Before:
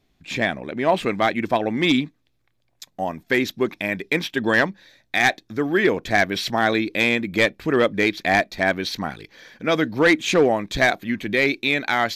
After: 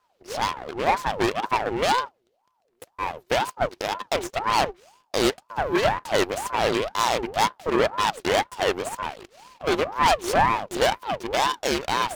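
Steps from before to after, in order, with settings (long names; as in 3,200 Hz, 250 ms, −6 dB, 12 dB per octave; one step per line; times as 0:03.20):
full-wave rectification
ring modulator whose carrier an LFO sweeps 690 Hz, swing 50%, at 2 Hz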